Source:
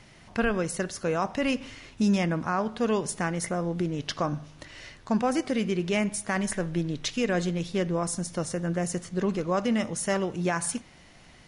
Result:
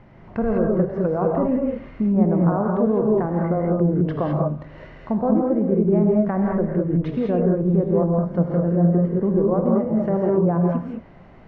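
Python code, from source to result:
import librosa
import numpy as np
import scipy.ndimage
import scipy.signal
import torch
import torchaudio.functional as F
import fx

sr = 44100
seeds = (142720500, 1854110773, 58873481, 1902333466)

p1 = scipy.signal.sosfilt(scipy.signal.butter(2, 1100.0, 'lowpass', fs=sr, output='sos'), x)
p2 = fx.env_lowpass_down(p1, sr, base_hz=850.0, full_db=-25.5)
p3 = fx.over_compress(p2, sr, threshold_db=-27.0, ratio=-1.0)
p4 = p2 + F.gain(torch.from_numpy(p3), -1.0).numpy()
y = fx.rev_gated(p4, sr, seeds[0], gate_ms=230, shape='rising', drr_db=-1.0)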